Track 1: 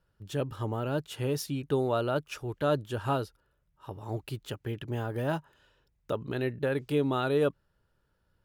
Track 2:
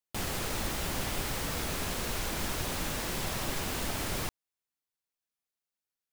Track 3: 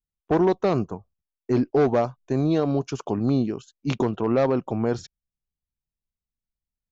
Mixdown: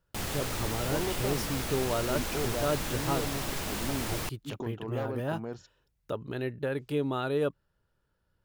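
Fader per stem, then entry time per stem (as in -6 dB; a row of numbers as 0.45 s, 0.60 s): -2.5 dB, -0.5 dB, -14.5 dB; 0.00 s, 0.00 s, 0.60 s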